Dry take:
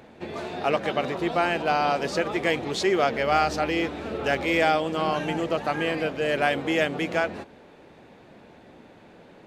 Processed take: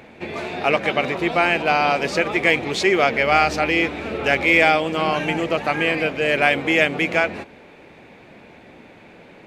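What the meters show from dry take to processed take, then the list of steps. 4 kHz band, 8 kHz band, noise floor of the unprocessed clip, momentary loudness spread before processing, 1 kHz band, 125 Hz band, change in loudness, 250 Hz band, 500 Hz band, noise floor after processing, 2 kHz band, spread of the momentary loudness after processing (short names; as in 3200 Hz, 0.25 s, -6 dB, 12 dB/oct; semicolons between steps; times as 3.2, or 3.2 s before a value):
+6.0 dB, +4.0 dB, -51 dBFS, 6 LU, +4.5 dB, +4.0 dB, +6.5 dB, +4.0 dB, +4.0 dB, -46 dBFS, +9.5 dB, 7 LU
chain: bell 2300 Hz +9 dB 0.49 oct; gain +4 dB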